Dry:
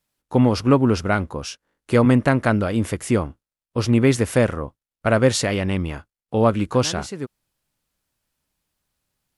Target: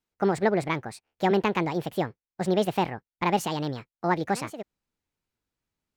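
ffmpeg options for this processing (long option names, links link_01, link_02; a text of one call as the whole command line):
ffmpeg -i in.wav -af "lowpass=frequency=3000:poles=1,asetrate=69237,aresample=44100,volume=-7dB" out.wav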